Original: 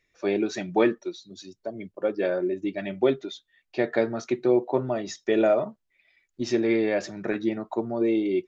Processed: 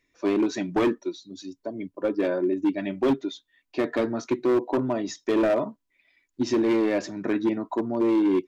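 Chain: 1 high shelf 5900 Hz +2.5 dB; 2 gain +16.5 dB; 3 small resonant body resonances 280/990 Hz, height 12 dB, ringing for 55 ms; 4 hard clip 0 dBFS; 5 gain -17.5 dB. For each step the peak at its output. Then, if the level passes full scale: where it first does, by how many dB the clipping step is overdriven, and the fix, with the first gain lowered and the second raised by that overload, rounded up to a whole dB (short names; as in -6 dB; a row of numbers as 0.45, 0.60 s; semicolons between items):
-9.0, +7.5, +10.0, 0.0, -17.5 dBFS; step 2, 10.0 dB; step 2 +6.5 dB, step 5 -7.5 dB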